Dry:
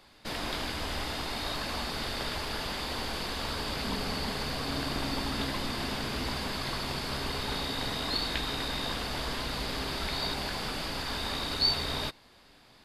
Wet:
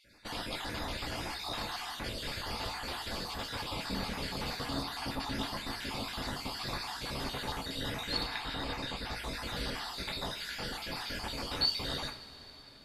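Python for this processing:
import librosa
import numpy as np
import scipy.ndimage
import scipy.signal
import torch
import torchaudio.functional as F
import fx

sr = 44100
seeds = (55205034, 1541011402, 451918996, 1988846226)

y = fx.spec_dropout(x, sr, seeds[0], share_pct=39)
y = fx.high_shelf(y, sr, hz=fx.line((8.22, 4600.0), (9.15, 8000.0)), db=-8.5, at=(8.22, 9.15), fade=0.02)
y = fx.rev_double_slope(y, sr, seeds[1], early_s=0.36, late_s=4.4, knee_db=-18, drr_db=2.5)
y = F.gain(torch.from_numpy(y), -3.5).numpy()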